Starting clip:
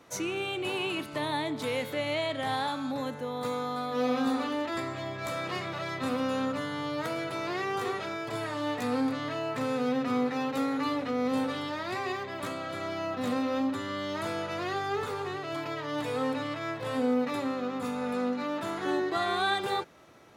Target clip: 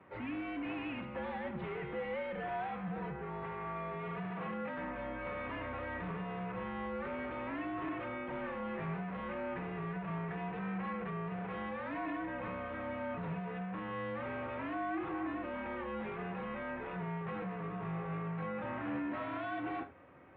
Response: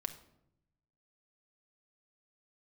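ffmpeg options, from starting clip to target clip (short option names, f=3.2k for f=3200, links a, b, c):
-filter_complex "[0:a]aresample=11025,volume=35dB,asoftclip=hard,volume=-35dB,aresample=44100[a];[1:a]atrim=start_sample=2205,afade=t=out:st=0.14:d=0.01,atrim=end_sample=6615[b];[a][b]afir=irnorm=-1:irlink=0,highpass=f=160:t=q:w=0.5412,highpass=f=160:t=q:w=1.307,lowpass=f=2.6k:t=q:w=0.5176,lowpass=f=2.6k:t=q:w=0.7071,lowpass=f=2.6k:t=q:w=1.932,afreqshift=-80,volume=-1dB"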